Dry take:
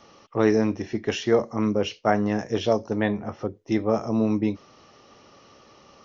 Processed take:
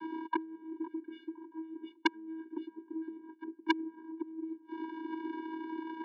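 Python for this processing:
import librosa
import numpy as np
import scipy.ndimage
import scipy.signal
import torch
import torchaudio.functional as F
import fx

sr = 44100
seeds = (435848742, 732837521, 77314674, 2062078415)

p1 = fx.leveller(x, sr, passes=3)
p2 = fx.over_compress(p1, sr, threshold_db=-17.0, ratio=-0.5)
p3 = scipy.ndimage.gaussian_filter1d(p2, 3.4, mode='constant')
p4 = fx.gate_flip(p3, sr, shuts_db=-21.0, range_db=-41)
p5 = fx.vocoder(p4, sr, bands=16, carrier='square', carrier_hz=322.0)
p6 = p5 + fx.echo_filtered(p5, sr, ms=511, feedback_pct=37, hz=1100.0, wet_db=-14.5, dry=0)
p7 = fx.transformer_sat(p6, sr, knee_hz=1900.0)
y = p7 * librosa.db_to_amplitude(17.0)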